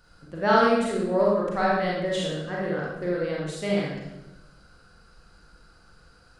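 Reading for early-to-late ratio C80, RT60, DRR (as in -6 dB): 3.0 dB, 1.0 s, -5.0 dB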